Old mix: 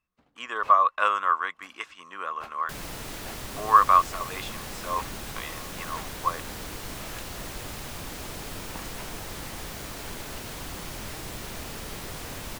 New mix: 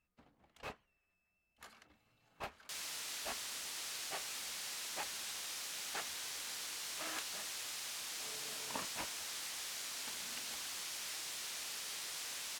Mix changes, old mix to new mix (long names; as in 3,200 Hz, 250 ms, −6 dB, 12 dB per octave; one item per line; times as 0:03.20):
speech: muted
second sound: add resonant band-pass 5,800 Hz, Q 0.65